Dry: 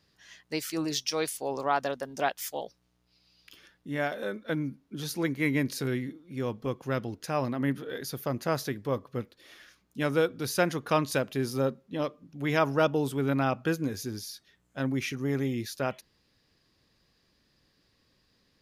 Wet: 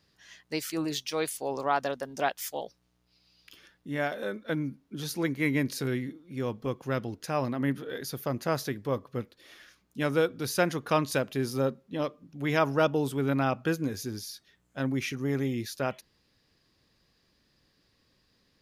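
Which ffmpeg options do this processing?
ffmpeg -i in.wav -filter_complex "[0:a]asettb=1/sr,asplit=3[link_01][link_02][link_03];[link_01]atrim=end=0.714[link_04];[link_02]atrim=start=0.71:end=1.31,asetpts=PTS-STARTPTS,afade=type=in:duration=0.004:curve=qsin,afade=type=out:start_time=0.596:duration=0.004:curve=qsin,equalizer=frequency=5500:width_type=o:width=0.37:gain=-9[link_05];[link_03]atrim=start=1.306[link_06];[link_04][link_05]acrossfade=duration=0.004:curve1=hsin:curve2=qsin[link_07];[link_07][link_06]acrossfade=duration=0.004:curve1=qsin:curve2=hsin" out.wav

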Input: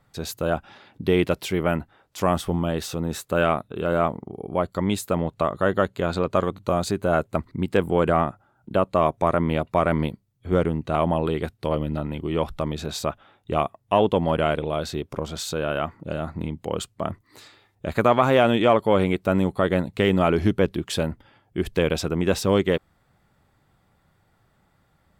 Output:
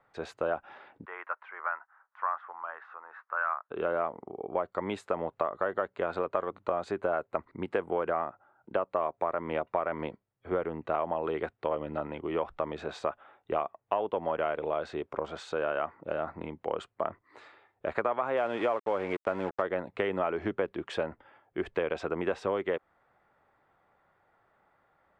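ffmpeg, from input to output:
ffmpeg -i in.wav -filter_complex "[0:a]asplit=3[link_01][link_02][link_03];[link_01]afade=type=out:start_time=1.04:duration=0.02[link_04];[link_02]asuperpass=centerf=1300:order=4:qfactor=1.7,afade=type=in:start_time=1.04:duration=0.02,afade=type=out:start_time=3.69:duration=0.02[link_05];[link_03]afade=type=in:start_time=3.69:duration=0.02[link_06];[link_04][link_05][link_06]amix=inputs=3:normalize=0,asettb=1/sr,asplit=3[link_07][link_08][link_09];[link_07]atrim=end=18.374[link_10];[link_08]atrim=start=18.37:end=19.62,asetpts=PTS-STARTPTS,afade=type=in:duration=0.004:curve=qsin,afade=type=out:start_time=1.246:duration=0.004:curve=qsin,acrusher=bits=4:mix=0:aa=0.5[link_11];[link_09]atrim=start=19.616[link_12];[link_10][link_11]acrossfade=duration=0.004:curve1=hsin:curve2=qsin[link_13];[link_13][link_12]acrossfade=duration=0.004:curve1=qsin:curve2=hsin,lowpass=frequency=8700:width=0.5412,lowpass=frequency=8700:width=1.3066,acrossover=split=380 2300:gain=0.126 1 0.0794[link_14][link_15][link_16];[link_14][link_15][link_16]amix=inputs=3:normalize=0,acompressor=threshold=-27dB:ratio=6,volume=1dB" out.wav

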